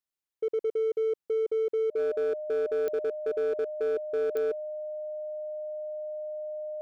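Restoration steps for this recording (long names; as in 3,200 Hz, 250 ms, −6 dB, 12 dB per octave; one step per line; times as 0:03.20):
clipped peaks rebuilt −24 dBFS
click removal
notch filter 610 Hz, Q 30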